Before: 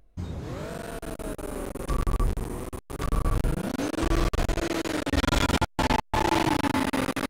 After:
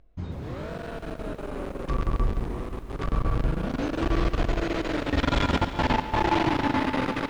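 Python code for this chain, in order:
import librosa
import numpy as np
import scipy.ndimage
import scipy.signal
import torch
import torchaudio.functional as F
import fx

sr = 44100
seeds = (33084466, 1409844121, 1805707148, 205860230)

y = scipy.signal.sosfilt(scipy.signal.butter(2, 3900.0, 'lowpass', fs=sr, output='sos'), x)
y = fx.echo_heads(y, sr, ms=116, heads='first and third', feedback_pct=67, wet_db=-16.0)
y = fx.echo_crushed(y, sr, ms=139, feedback_pct=35, bits=8, wet_db=-14.0)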